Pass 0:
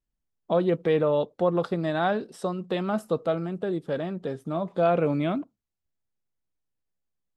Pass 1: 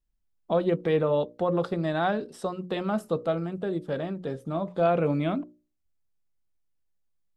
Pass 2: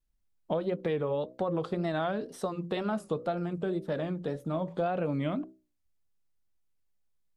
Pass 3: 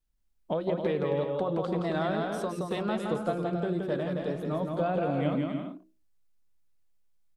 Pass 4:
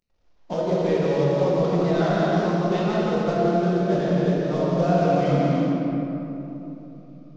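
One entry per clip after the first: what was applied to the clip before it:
low-shelf EQ 76 Hz +9.5 dB; mains-hum notches 60/120/180/240/300/360/420/480/540/600 Hz; level −1 dB
downward compressor, threshold −27 dBFS, peak gain reduction 9 dB; tape wow and flutter 110 cents
bouncing-ball delay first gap 170 ms, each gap 0.6×, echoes 5
variable-slope delta modulation 32 kbit/s; rectangular room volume 160 cubic metres, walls hard, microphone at 0.89 metres

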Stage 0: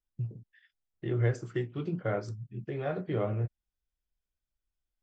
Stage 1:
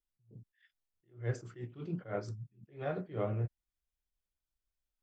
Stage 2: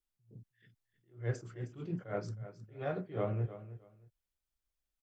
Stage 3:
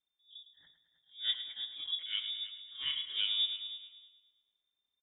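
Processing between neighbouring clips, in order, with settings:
level that may rise only so fast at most 190 dB per second; level −3 dB
repeating echo 313 ms, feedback 21%, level −14 dB
repeating echo 108 ms, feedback 55%, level −10.5 dB; voice inversion scrambler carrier 3,600 Hz

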